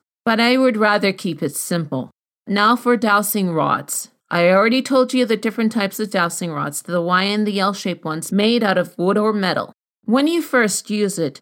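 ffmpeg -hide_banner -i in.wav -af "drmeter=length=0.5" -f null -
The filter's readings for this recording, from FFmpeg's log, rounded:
Channel 1: DR: 10.8
Overall DR: 10.8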